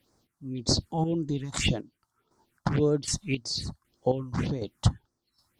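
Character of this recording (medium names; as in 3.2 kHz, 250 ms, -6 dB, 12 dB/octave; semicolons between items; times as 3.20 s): phasing stages 4, 1.8 Hz, lowest notch 390–2900 Hz; chopped level 1.3 Hz, depth 65%, duty 35%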